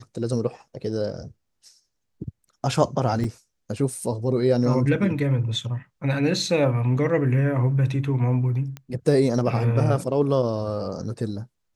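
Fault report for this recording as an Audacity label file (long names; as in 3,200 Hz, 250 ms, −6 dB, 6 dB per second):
3.240000	3.240000	drop-out 3.9 ms
8.770000	8.770000	click −21 dBFS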